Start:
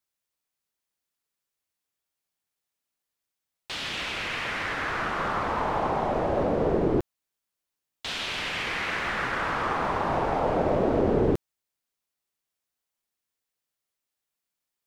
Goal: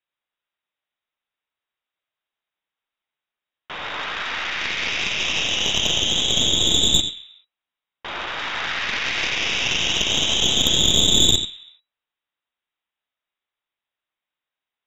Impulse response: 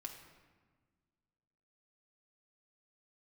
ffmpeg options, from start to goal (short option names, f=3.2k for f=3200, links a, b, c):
-filter_complex "[0:a]lowpass=f=3.3k:t=q:w=0.5098,lowpass=f=3.3k:t=q:w=0.6013,lowpass=f=3.3k:t=q:w=0.9,lowpass=f=3.3k:t=q:w=2.563,afreqshift=-3900,asplit=2[a][b];[1:a]atrim=start_sample=2205,afade=t=out:st=0.4:d=0.01,atrim=end_sample=18081,adelay=88[c];[b][c]afir=irnorm=-1:irlink=0,volume=-3dB[d];[a][d]amix=inputs=2:normalize=0,aeval=exprs='0.398*(cos(1*acos(clip(val(0)/0.398,-1,1)))-cos(1*PI/2))+0.141*(cos(4*acos(clip(val(0)/0.398,-1,1)))-cos(4*PI/2))':c=same,volume=3.5dB"